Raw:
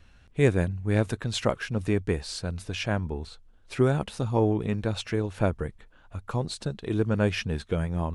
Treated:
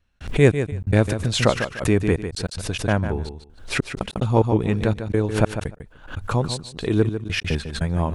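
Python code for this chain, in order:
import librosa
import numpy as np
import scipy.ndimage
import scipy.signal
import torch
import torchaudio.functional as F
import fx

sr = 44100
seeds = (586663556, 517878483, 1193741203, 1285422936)

y = fx.step_gate(x, sr, bpm=146, pattern='..xxx..x.xx.xxxx', floor_db=-60.0, edge_ms=4.5)
y = fx.echo_feedback(y, sr, ms=149, feedback_pct=16, wet_db=-9.5)
y = fx.pre_swell(y, sr, db_per_s=120.0)
y = y * librosa.db_to_amplitude(6.5)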